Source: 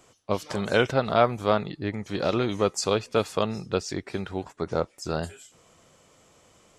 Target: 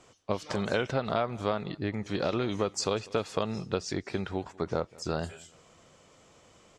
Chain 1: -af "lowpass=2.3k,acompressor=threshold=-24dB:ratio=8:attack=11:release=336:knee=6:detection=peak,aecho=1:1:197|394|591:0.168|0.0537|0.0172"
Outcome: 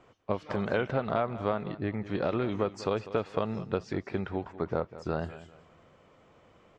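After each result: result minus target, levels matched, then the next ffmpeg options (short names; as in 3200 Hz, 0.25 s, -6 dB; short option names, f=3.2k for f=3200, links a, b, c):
8000 Hz band -16.5 dB; echo-to-direct +8 dB
-af "lowpass=7.3k,acompressor=threshold=-24dB:ratio=8:attack=11:release=336:knee=6:detection=peak,aecho=1:1:197|394|591:0.168|0.0537|0.0172"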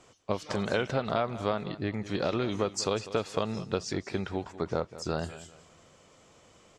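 echo-to-direct +8 dB
-af "lowpass=7.3k,acompressor=threshold=-24dB:ratio=8:attack=11:release=336:knee=6:detection=peak,aecho=1:1:197|394:0.0668|0.0214"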